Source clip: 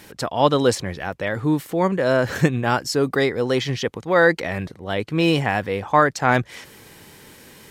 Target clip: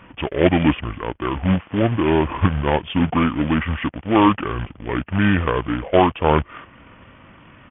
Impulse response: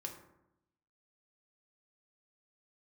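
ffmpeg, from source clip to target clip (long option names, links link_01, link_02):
-af "aresample=11025,acrusher=bits=2:mode=log:mix=0:aa=0.000001,aresample=44100,asetrate=26990,aresample=44100,atempo=1.63392,volume=1dB"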